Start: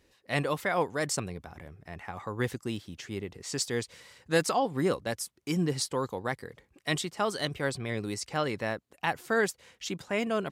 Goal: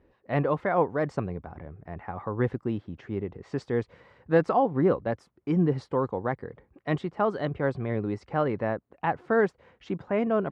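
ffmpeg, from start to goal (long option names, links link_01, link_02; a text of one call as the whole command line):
ffmpeg -i in.wav -af "lowpass=1200,volume=5dB" out.wav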